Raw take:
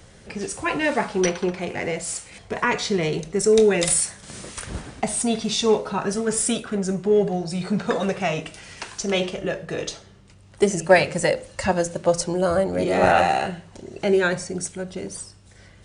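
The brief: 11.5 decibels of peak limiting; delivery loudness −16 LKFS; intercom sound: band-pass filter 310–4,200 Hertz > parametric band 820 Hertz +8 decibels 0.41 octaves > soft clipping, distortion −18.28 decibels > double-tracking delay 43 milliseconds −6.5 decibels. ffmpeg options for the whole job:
ffmpeg -i in.wav -filter_complex "[0:a]alimiter=limit=-13.5dB:level=0:latency=1,highpass=310,lowpass=4200,equalizer=frequency=820:width_type=o:width=0.41:gain=8,asoftclip=threshold=-14.5dB,asplit=2[link_01][link_02];[link_02]adelay=43,volume=-6.5dB[link_03];[link_01][link_03]amix=inputs=2:normalize=0,volume=9.5dB" out.wav

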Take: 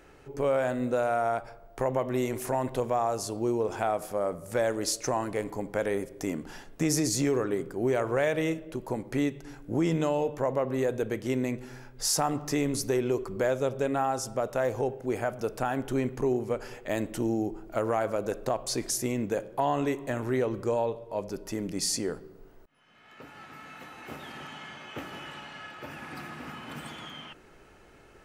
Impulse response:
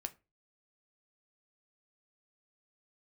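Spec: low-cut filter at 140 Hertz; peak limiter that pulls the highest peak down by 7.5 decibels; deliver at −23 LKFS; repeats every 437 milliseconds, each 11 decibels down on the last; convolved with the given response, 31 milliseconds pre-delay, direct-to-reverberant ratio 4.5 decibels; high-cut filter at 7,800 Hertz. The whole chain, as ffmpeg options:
-filter_complex "[0:a]highpass=140,lowpass=7800,alimiter=limit=-21dB:level=0:latency=1,aecho=1:1:437|874|1311:0.282|0.0789|0.0221,asplit=2[link_01][link_02];[1:a]atrim=start_sample=2205,adelay=31[link_03];[link_02][link_03]afir=irnorm=-1:irlink=0,volume=-2.5dB[link_04];[link_01][link_04]amix=inputs=2:normalize=0,volume=8.5dB"

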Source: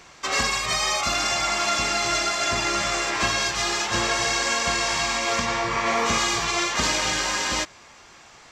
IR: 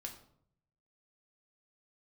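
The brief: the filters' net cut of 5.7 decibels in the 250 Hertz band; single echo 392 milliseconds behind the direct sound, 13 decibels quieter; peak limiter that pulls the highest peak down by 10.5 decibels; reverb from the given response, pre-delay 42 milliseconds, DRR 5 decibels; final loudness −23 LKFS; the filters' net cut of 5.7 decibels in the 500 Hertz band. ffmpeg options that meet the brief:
-filter_complex "[0:a]equalizer=frequency=250:width_type=o:gain=-5,equalizer=frequency=500:width_type=o:gain=-7.5,alimiter=limit=-20.5dB:level=0:latency=1,aecho=1:1:392:0.224,asplit=2[link_01][link_02];[1:a]atrim=start_sample=2205,adelay=42[link_03];[link_02][link_03]afir=irnorm=-1:irlink=0,volume=-2dB[link_04];[link_01][link_04]amix=inputs=2:normalize=0,volume=4dB"

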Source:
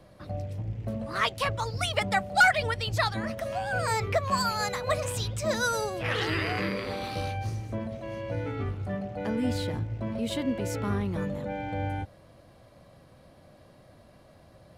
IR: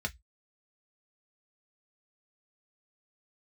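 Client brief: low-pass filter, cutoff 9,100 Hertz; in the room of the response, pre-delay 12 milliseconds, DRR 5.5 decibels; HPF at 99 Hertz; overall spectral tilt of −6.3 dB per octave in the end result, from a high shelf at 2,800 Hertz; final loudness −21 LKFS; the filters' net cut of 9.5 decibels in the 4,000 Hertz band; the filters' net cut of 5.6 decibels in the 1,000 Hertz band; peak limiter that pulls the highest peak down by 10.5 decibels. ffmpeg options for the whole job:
-filter_complex "[0:a]highpass=99,lowpass=9100,equalizer=frequency=1000:width_type=o:gain=-7,highshelf=frequency=2800:gain=-3.5,equalizer=frequency=4000:width_type=o:gain=-9,alimiter=level_in=3dB:limit=-24dB:level=0:latency=1,volume=-3dB,asplit=2[link_01][link_02];[1:a]atrim=start_sample=2205,adelay=12[link_03];[link_02][link_03]afir=irnorm=-1:irlink=0,volume=-9dB[link_04];[link_01][link_04]amix=inputs=2:normalize=0,volume=13dB"

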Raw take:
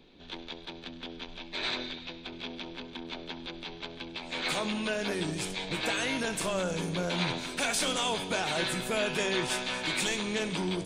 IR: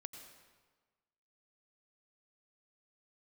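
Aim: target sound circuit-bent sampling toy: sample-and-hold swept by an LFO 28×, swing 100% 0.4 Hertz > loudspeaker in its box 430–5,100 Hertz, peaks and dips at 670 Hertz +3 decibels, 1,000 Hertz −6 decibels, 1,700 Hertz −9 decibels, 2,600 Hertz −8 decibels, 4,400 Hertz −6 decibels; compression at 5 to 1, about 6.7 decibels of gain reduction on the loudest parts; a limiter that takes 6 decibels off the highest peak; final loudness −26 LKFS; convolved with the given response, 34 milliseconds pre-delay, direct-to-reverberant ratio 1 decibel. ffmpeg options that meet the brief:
-filter_complex "[0:a]acompressor=threshold=-33dB:ratio=5,alimiter=level_in=3.5dB:limit=-24dB:level=0:latency=1,volume=-3.5dB,asplit=2[link_01][link_02];[1:a]atrim=start_sample=2205,adelay=34[link_03];[link_02][link_03]afir=irnorm=-1:irlink=0,volume=3.5dB[link_04];[link_01][link_04]amix=inputs=2:normalize=0,acrusher=samples=28:mix=1:aa=0.000001:lfo=1:lforange=28:lforate=0.4,highpass=430,equalizer=frequency=670:width_type=q:width=4:gain=3,equalizer=frequency=1000:width_type=q:width=4:gain=-6,equalizer=frequency=1700:width_type=q:width=4:gain=-9,equalizer=frequency=2600:width_type=q:width=4:gain=-8,equalizer=frequency=4400:width_type=q:width=4:gain=-6,lowpass=frequency=5100:width=0.5412,lowpass=frequency=5100:width=1.3066,volume=15.5dB"

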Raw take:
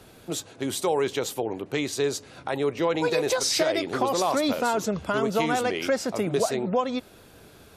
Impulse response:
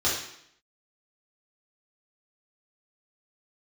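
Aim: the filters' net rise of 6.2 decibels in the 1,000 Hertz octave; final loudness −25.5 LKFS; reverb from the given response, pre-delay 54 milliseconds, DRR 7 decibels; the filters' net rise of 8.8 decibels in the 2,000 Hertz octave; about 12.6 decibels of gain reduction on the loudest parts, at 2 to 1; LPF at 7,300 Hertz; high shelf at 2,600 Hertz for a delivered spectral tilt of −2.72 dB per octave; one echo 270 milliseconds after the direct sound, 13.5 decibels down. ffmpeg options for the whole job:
-filter_complex "[0:a]lowpass=7300,equalizer=frequency=1000:width_type=o:gain=5.5,equalizer=frequency=2000:width_type=o:gain=7,highshelf=frequency=2600:gain=6,acompressor=threshold=-39dB:ratio=2,aecho=1:1:270:0.211,asplit=2[link_01][link_02];[1:a]atrim=start_sample=2205,adelay=54[link_03];[link_02][link_03]afir=irnorm=-1:irlink=0,volume=-19dB[link_04];[link_01][link_04]amix=inputs=2:normalize=0,volume=7dB"

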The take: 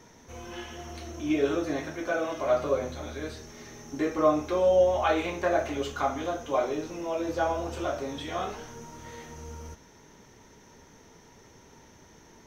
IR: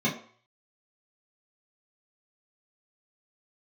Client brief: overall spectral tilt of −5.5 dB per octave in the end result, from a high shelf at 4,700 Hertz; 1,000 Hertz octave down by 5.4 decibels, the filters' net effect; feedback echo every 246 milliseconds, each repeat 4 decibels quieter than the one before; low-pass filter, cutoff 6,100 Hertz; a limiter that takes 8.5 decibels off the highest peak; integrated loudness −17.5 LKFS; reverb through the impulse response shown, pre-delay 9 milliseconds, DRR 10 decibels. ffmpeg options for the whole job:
-filter_complex "[0:a]lowpass=6100,equalizer=frequency=1000:width_type=o:gain=-7.5,highshelf=frequency=4700:gain=-4.5,alimiter=limit=-22.5dB:level=0:latency=1,aecho=1:1:246|492|738|984|1230|1476|1722|1968|2214:0.631|0.398|0.25|0.158|0.0994|0.0626|0.0394|0.0249|0.0157,asplit=2[link_01][link_02];[1:a]atrim=start_sample=2205,adelay=9[link_03];[link_02][link_03]afir=irnorm=-1:irlink=0,volume=-21dB[link_04];[link_01][link_04]amix=inputs=2:normalize=0,volume=13.5dB"

